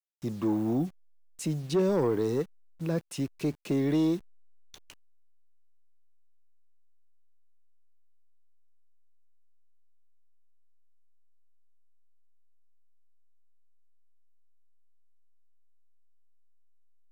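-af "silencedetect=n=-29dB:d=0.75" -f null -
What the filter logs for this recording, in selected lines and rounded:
silence_start: 4.16
silence_end: 17.12 | silence_duration: 12.96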